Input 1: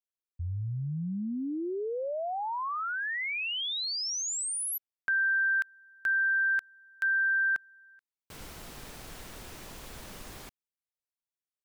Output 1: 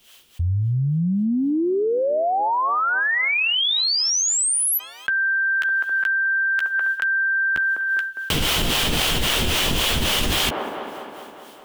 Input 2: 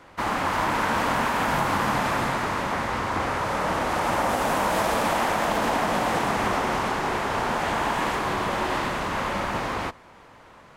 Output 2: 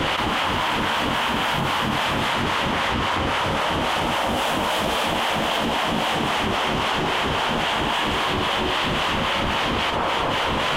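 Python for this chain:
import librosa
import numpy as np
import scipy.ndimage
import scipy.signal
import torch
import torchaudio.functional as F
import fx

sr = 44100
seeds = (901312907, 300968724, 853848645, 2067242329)

y = fx.peak_eq(x, sr, hz=3100.0, db=13.0, octaves=0.56)
y = fx.rider(y, sr, range_db=4, speed_s=2.0)
y = fx.harmonic_tremolo(y, sr, hz=3.7, depth_pct=70, crossover_hz=420.0)
y = fx.doubler(y, sr, ms=13.0, db=-12.5)
y = fx.echo_wet_bandpass(y, sr, ms=203, feedback_pct=65, hz=610.0, wet_db=-19.0)
y = fx.env_flatten(y, sr, amount_pct=100)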